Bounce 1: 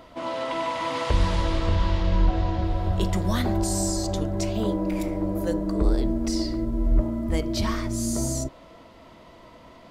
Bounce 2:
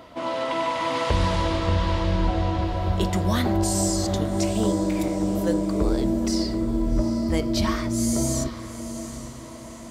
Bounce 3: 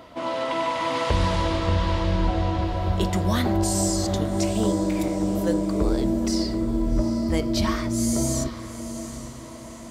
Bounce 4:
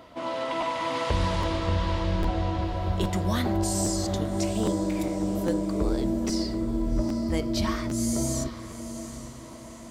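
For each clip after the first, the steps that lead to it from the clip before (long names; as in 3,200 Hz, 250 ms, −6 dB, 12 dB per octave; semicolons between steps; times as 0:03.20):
high-pass filter 61 Hz; feedback delay with all-pass diffusion 803 ms, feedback 48%, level −11.5 dB; level +2.5 dB
no processing that can be heard
regular buffer underruns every 0.81 s, samples 512, repeat, from 0:00.60; level −3.5 dB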